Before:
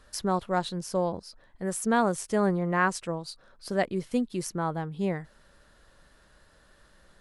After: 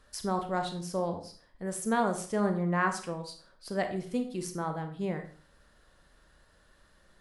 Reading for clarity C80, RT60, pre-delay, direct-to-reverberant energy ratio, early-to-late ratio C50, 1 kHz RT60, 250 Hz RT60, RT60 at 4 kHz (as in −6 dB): 13.5 dB, 0.45 s, 28 ms, 6.0 dB, 9.5 dB, 0.45 s, 0.45 s, 0.35 s